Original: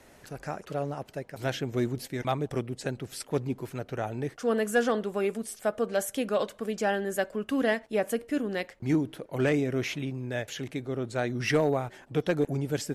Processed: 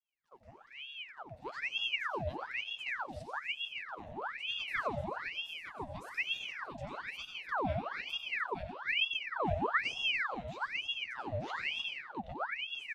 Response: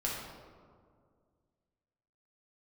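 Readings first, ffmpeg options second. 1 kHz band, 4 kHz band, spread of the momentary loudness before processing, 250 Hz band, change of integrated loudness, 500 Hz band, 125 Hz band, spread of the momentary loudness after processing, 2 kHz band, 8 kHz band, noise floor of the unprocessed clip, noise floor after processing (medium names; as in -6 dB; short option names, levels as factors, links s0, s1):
-3.0 dB, +4.5 dB, 9 LU, -17.5 dB, -6.0 dB, -15.0 dB, -12.5 dB, 12 LU, 0.0 dB, -20.5 dB, -56 dBFS, -56 dBFS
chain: -filter_complex "[0:a]agate=range=0.0224:threshold=0.00794:ratio=3:detection=peak,asplit=3[s0][s1][s2];[s0]bandpass=f=270:t=q:w=8,volume=1[s3];[s1]bandpass=f=2290:t=q:w=8,volume=0.501[s4];[s2]bandpass=f=3010:t=q:w=8,volume=0.355[s5];[s3][s4][s5]amix=inputs=3:normalize=0,equalizer=f=2400:t=o:w=0.76:g=-10,dynaudnorm=f=130:g=21:m=2.24,asplit=2[s6][s7];[s7]alimiter=level_in=1.26:limit=0.0631:level=0:latency=1,volume=0.794,volume=1.33[s8];[s6][s8]amix=inputs=2:normalize=0,highshelf=f=11000:g=3.5,flanger=delay=7.7:depth=9.6:regen=41:speed=0.83:shape=triangular,aecho=1:1:297:0.335,asplit=2[s9][s10];[1:a]atrim=start_sample=2205,afade=t=out:st=0.37:d=0.01,atrim=end_sample=16758,adelay=90[s11];[s10][s11]afir=irnorm=-1:irlink=0,volume=0.422[s12];[s9][s12]amix=inputs=2:normalize=0,aeval=exprs='val(0)*sin(2*PI*1700*n/s+1700*0.8/1.1*sin(2*PI*1.1*n/s))':c=same,volume=0.473"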